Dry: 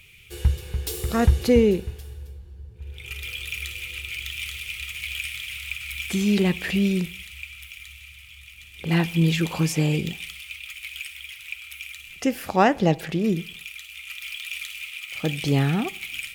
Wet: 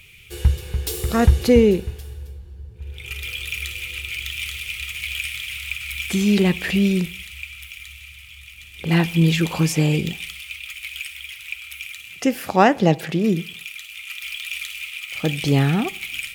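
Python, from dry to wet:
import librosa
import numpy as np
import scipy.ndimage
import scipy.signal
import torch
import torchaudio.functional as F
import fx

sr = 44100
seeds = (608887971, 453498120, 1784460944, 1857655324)

y = fx.highpass(x, sr, hz=86.0, slope=24, at=(11.85, 14.23))
y = y * librosa.db_to_amplitude(3.5)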